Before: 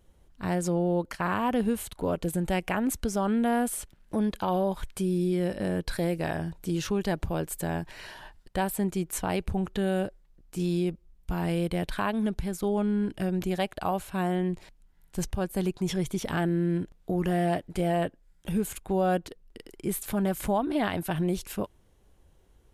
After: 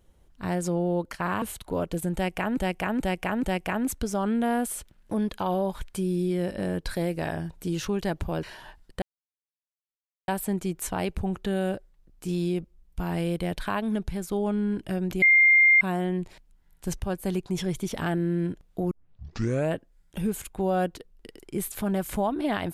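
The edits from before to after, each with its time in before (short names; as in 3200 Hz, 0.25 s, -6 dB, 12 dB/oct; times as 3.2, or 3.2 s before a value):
1.42–1.73 cut
2.45–2.88 loop, 4 plays
7.45–8 cut
8.59 insert silence 1.26 s
13.53–14.12 bleep 2110 Hz -14 dBFS
17.22 tape start 0.83 s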